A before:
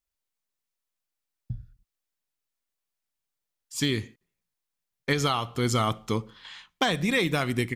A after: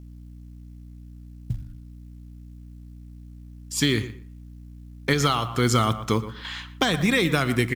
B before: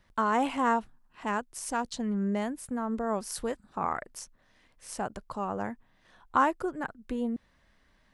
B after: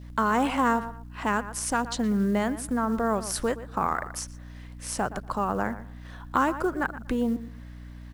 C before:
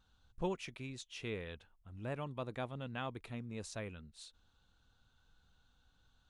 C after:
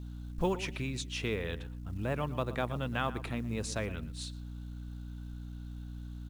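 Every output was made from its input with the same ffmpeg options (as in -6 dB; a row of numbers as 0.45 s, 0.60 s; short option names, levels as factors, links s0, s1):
-filter_complex "[0:a]asplit=2[s0][s1];[s1]adelay=119,lowpass=f=2800:p=1,volume=0.168,asplit=2[s2][s3];[s3]adelay=119,lowpass=f=2800:p=1,volume=0.17[s4];[s0][s2][s4]amix=inputs=3:normalize=0,acrossover=split=490|3000[s5][s6][s7];[s6]acompressor=threshold=0.0251:ratio=3[s8];[s5][s8][s7]amix=inputs=3:normalize=0,adynamicequalizer=threshold=0.00447:dfrequency=1400:dqfactor=1.6:tfrequency=1400:tqfactor=1.6:attack=5:release=100:ratio=0.375:range=3:mode=boostabove:tftype=bell,asplit=2[s9][s10];[s10]acompressor=threshold=0.00708:ratio=5,volume=1.26[s11];[s9][s11]amix=inputs=2:normalize=0,aeval=exprs='val(0)+0.00631*(sin(2*PI*60*n/s)+sin(2*PI*2*60*n/s)/2+sin(2*PI*3*60*n/s)/3+sin(2*PI*4*60*n/s)/4+sin(2*PI*5*60*n/s)/5)':c=same,acrusher=bits=8:mode=log:mix=0:aa=0.000001,volume=1.41"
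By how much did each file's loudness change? +3.0 LU, +4.0 LU, +6.5 LU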